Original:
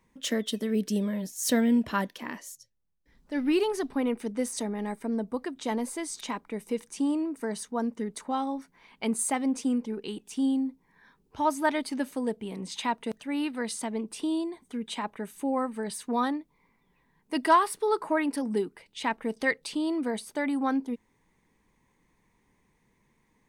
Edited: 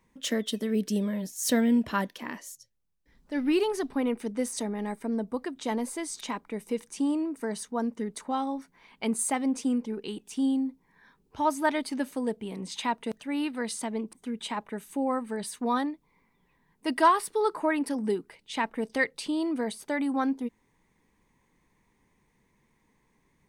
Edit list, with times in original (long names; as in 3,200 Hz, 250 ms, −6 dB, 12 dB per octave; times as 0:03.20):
0:14.13–0:14.60: remove